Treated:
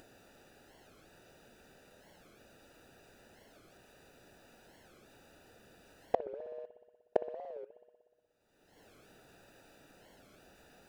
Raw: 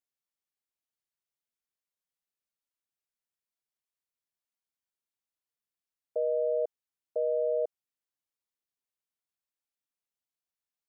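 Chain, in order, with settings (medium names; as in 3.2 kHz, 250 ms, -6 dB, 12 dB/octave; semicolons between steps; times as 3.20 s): local Wiener filter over 41 samples; bass shelf 430 Hz -10.5 dB; upward compressor, threshold -51 dBFS; inverted gate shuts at -29 dBFS, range -30 dB; reverberation RT60 1.6 s, pre-delay 60 ms, DRR 12 dB; warped record 45 rpm, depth 250 cents; trim +18 dB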